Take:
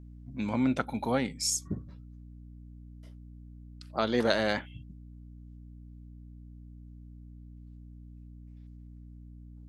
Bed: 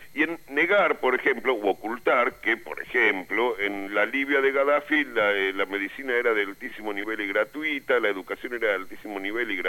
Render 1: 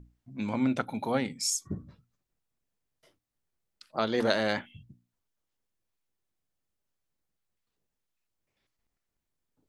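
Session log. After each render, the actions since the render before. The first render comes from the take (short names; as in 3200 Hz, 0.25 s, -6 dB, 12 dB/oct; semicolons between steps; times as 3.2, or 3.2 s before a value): notches 60/120/180/240/300 Hz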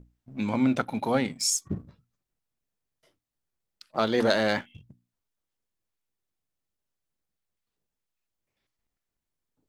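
sample leveller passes 1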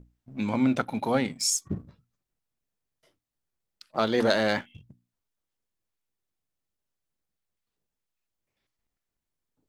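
nothing audible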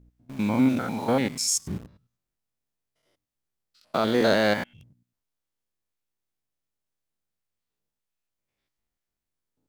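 stepped spectrum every 0.1 s; in parallel at -5 dB: bit-crush 7-bit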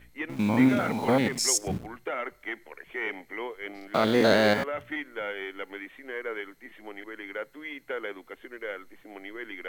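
add bed -11.5 dB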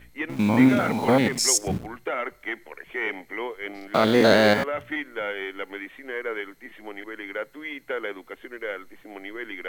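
gain +4 dB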